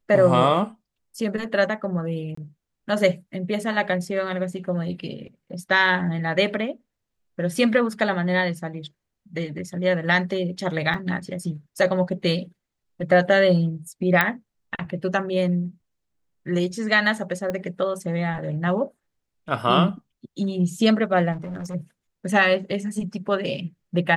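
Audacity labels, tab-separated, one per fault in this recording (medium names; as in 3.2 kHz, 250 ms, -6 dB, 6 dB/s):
2.350000	2.370000	dropout 24 ms
10.940000	10.940000	dropout 2.9 ms
14.210000	14.210000	pop -5 dBFS
17.500000	17.500000	pop -15 dBFS
21.320000	21.750000	clipped -29 dBFS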